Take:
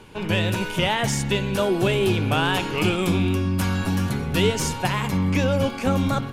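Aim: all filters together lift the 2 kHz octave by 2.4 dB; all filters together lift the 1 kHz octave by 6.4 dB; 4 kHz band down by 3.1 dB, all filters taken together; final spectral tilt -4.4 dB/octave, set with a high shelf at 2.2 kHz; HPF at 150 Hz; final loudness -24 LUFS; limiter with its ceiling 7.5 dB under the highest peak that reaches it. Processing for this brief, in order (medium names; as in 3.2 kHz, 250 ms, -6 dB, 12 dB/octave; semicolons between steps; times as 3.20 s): high-pass 150 Hz; peaking EQ 1 kHz +8 dB; peaking EQ 2 kHz +4 dB; treble shelf 2.2 kHz -4.5 dB; peaking EQ 4 kHz -3 dB; trim -0.5 dB; peak limiter -13 dBFS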